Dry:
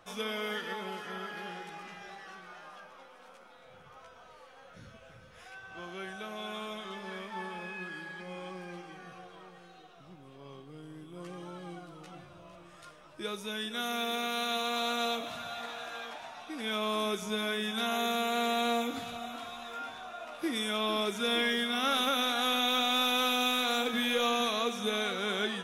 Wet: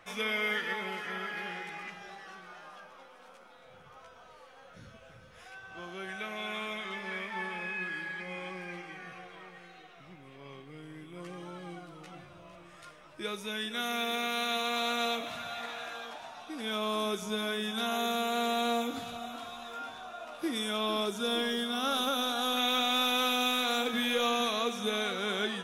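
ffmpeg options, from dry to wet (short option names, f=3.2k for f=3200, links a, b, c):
-af "asetnsamples=n=441:p=0,asendcmd='1.9 equalizer g 0;6.09 equalizer g 12;11.21 equalizer g 4.5;15.93 equalizer g -3.5;21.06 equalizer g -11;22.57 equalizer g -0.5',equalizer=f=2.1k:t=o:w=0.6:g=10.5"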